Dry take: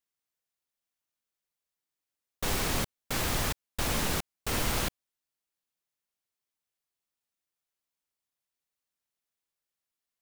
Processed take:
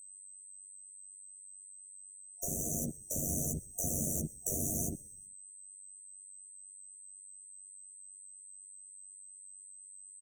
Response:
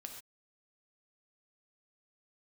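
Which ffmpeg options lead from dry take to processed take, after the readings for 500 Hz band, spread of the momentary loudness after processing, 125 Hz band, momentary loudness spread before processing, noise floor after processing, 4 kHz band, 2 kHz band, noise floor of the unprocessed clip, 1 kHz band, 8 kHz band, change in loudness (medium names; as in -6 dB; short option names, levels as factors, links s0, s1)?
-7.0 dB, 16 LU, -3.5 dB, 5 LU, -53 dBFS, under -40 dB, under -40 dB, under -85 dBFS, under -15 dB, +2.5 dB, -8.5 dB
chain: -filter_complex "[0:a]afftfilt=real='re*gte(hypot(re,im),0.0158)':imag='im*gte(hypot(re,im),0.0158)':win_size=1024:overlap=0.75,highpass=150,acrossover=split=440[s0][s1];[s0]adelay=50[s2];[s2][s1]amix=inputs=2:normalize=0,asoftclip=type=tanh:threshold=0.0316,acrossover=split=190|490[s3][s4][s5];[s3]acompressor=threshold=0.00178:ratio=4[s6];[s4]acompressor=threshold=0.00355:ratio=4[s7];[s5]acompressor=threshold=0.00447:ratio=4[s8];[s6][s7][s8]amix=inputs=3:normalize=0,equalizer=f=420:t=o:w=2.6:g=-13,dynaudnorm=f=310:g=13:m=4.47,aeval=exprs='val(0)+0.00447*sin(2*PI*8200*n/s)':c=same,tremolo=f=96:d=0.667,afftfilt=real='re*(1-between(b*sr/4096,700,5800))':imag='im*(1-between(b*sr/4096,700,5800))':win_size=4096:overlap=0.75,asplit=2[s9][s10];[s10]adelay=13,volume=0.75[s11];[s9][s11]amix=inputs=2:normalize=0,asplit=2[s12][s13];[s13]asplit=3[s14][s15][s16];[s14]adelay=126,afreqshift=-98,volume=0.0708[s17];[s15]adelay=252,afreqshift=-196,volume=0.0339[s18];[s16]adelay=378,afreqshift=-294,volume=0.0162[s19];[s17][s18][s19]amix=inputs=3:normalize=0[s20];[s12][s20]amix=inputs=2:normalize=0,volume=2"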